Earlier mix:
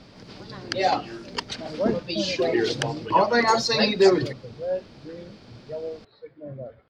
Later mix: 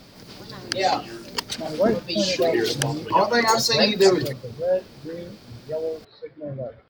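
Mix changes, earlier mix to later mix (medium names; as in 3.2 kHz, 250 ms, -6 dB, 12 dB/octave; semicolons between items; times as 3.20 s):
speech +5.0 dB; master: remove distance through air 100 m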